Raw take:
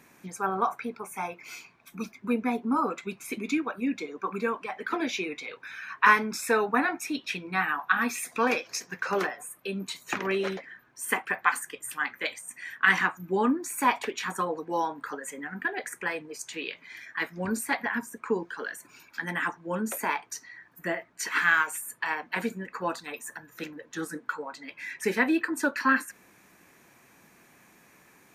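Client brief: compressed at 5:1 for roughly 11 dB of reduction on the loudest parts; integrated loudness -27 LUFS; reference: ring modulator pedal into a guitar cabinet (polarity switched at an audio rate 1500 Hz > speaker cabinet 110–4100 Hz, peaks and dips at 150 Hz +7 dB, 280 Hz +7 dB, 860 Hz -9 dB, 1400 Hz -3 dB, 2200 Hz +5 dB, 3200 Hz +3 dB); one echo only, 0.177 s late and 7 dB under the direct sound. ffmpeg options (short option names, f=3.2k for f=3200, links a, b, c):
-af "acompressor=threshold=-27dB:ratio=5,aecho=1:1:177:0.447,aeval=exprs='val(0)*sgn(sin(2*PI*1500*n/s))':c=same,highpass=110,equalizer=f=150:t=q:w=4:g=7,equalizer=f=280:t=q:w=4:g=7,equalizer=f=860:t=q:w=4:g=-9,equalizer=f=1.4k:t=q:w=4:g=-3,equalizer=f=2.2k:t=q:w=4:g=5,equalizer=f=3.2k:t=q:w=4:g=3,lowpass=f=4.1k:w=0.5412,lowpass=f=4.1k:w=1.3066,volume=4.5dB"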